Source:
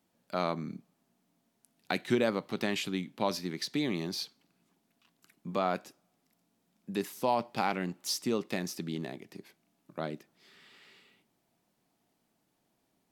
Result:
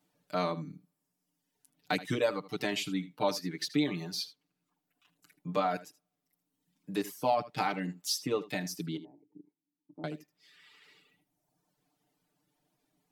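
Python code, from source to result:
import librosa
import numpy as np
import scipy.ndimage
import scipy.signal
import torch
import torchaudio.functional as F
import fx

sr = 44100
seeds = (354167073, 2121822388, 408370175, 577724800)

y = fx.dereverb_blind(x, sr, rt60_s=1.2)
y = fx.formant_cascade(y, sr, vowel='u', at=(8.97, 10.04))
y = y + 1.0 * np.pad(y, (int(6.7 * sr / 1000.0), 0))[:len(y)]
y = y + 10.0 ** (-16.5 / 20.0) * np.pad(y, (int(78 * sr / 1000.0), 0))[:len(y)]
y = y * 10.0 ** (-2.0 / 20.0)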